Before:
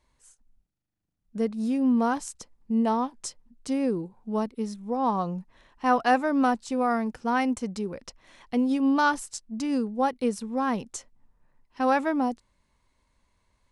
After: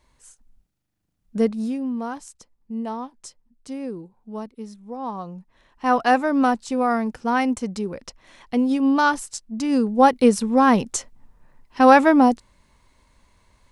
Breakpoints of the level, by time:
0:01.47 +7 dB
0:01.89 −5 dB
0:05.33 −5 dB
0:05.98 +4 dB
0:09.58 +4 dB
0:10.07 +11 dB

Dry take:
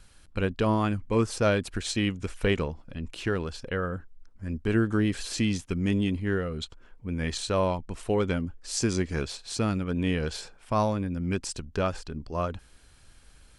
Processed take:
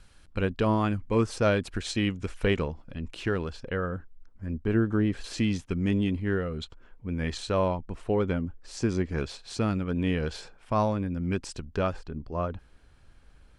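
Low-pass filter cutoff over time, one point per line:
low-pass filter 6 dB per octave
5,200 Hz
from 0:03.50 2,800 Hz
from 0:04.46 1,400 Hz
from 0:05.24 3,400 Hz
from 0:07.68 1,700 Hz
from 0:09.18 3,500 Hz
from 0:11.93 1,500 Hz

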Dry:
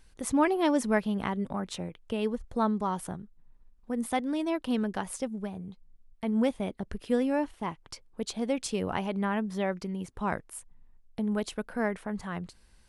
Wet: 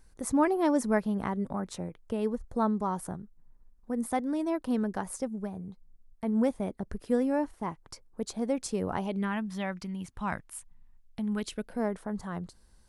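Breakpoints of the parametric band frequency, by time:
parametric band −11 dB 0.97 octaves
0:08.95 3,000 Hz
0:09.36 440 Hz
0:11.22 440 Hz
0:12.00 2,500 Hz

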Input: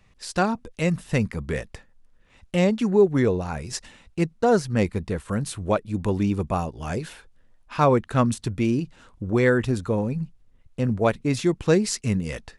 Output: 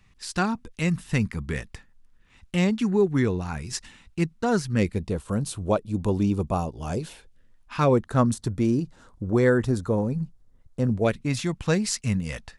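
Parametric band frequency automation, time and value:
parametric band −10 dB 0.83 octaves
0:04.67 560 Hz
0:05.16 1,900 Hz
0:07.01 1,900 Hz
0:07.75 450 Hz
0:08.01 2,600 Hz
0:10.83 2,600 Hz
0:11.30 380 Hz

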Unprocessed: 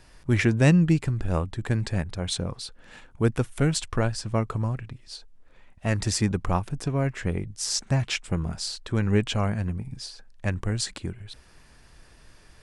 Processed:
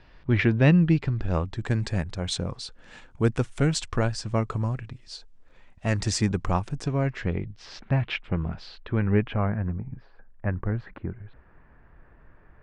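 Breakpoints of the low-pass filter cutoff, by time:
low-pass filter 24 dB per octave
0:00.79 3,900 Hz
0:01.80 8,100 Hz
0:06.76 8,100 Hz
0:07.67 3,200 Hz
0:08.72 3,200 Hz
0:09.68 1,800 Hz

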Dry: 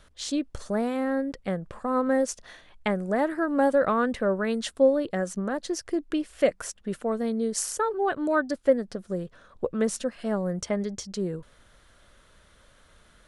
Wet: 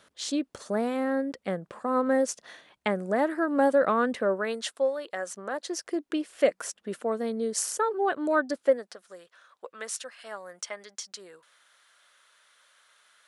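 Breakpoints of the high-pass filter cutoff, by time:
0:04.12 210 Hz
0:04.96 830 Hz
0:06.15 270 Hz
0:08.57 270 Hz
0:09.03 1,100 Hz

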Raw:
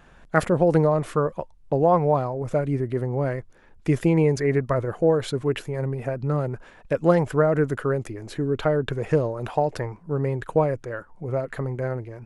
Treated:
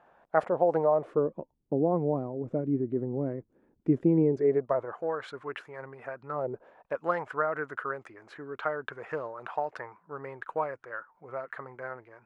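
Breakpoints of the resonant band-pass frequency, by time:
resonant band-pass, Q 1.8
0:00.91 750 Hz
0:01.31 280 Hz
0:04.23 280 Hz
0:05.04 1,300 Hz
0:06.30 1,300 Hz
0:06.51 410 Hz
0:07.04 1,300 Hz

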